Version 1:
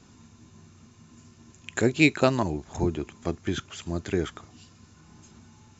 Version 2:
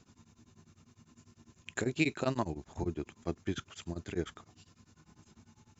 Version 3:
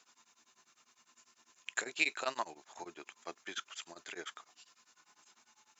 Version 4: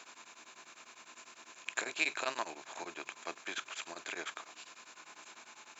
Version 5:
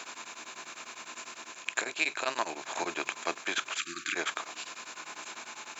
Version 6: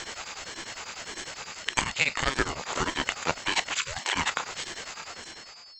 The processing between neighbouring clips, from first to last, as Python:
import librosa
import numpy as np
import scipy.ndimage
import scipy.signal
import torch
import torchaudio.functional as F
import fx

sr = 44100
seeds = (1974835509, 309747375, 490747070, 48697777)

y1 = x * np.abs(np.cos(np.pi * 10.0 * np.arange(len(x)) / sr))
y1 = y1 * 10.0 ** (-5.5 / 20.0)
y2 = scipy.signal.sosfilt(scipy.signal.butter(2, 930.0, 'highpass', fs=sr, output='sos'), y1)
y2 = y2 * 10.0 ** (3.0 / 20.0)
y3 = fx.bin_compress(y2, sr, power=0.6)
y3 = fx.hum_notches(y3, sr, base_hz=50, count=3)
y3 = y3 * 10.0 ** (-2.5 / 20.0)
y4 = fx.rider(y3, sr, range_db=4, speed_s=0.5)
y4 = fx.spec_erase(y4, sr, start_s=3.78, length_s=0.37, low_hz=370.0, high_hz=1100.0)
y4 = y4 * 10.0 ** (6.5 / 20.0)
y5 = fx.fade_out_tail(y4, sr, length_s=1.0)
y5 = y5 + 10.0 ** (-52.0 / 20.0) * np.sin(2.0 * np.pi * 4800.0 * np.arange(len(y5)) / sr)
y5 = fx.ring_lfo(y5, sr, carrier_hz=420.0, swing_pct=65, hz=1.7)
y5 = y5 * 10.0 ** (8.0 / 20.0)